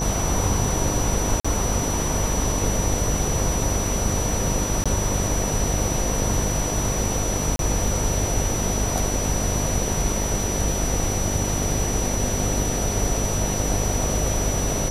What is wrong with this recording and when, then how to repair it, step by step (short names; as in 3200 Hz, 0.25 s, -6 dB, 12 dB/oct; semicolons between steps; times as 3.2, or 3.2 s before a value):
buzz 50 Hz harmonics 19 -27 dBFS
tone 5900 Hz -28 dBFS
1.4–1.45 gap 45 ms
4.84–4.86 gap 16 ms
7.56–7.59 gap 32 ms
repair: notch 5900 Hz, Q 30; de-hum 50 Hz, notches 19; interpolate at 1.4, 45 ms; interpolate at 4.84, 16 ms; interpolate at 7.56, 32 ms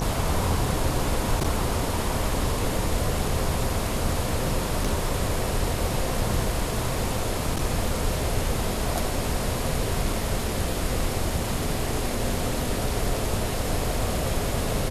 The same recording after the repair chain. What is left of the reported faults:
none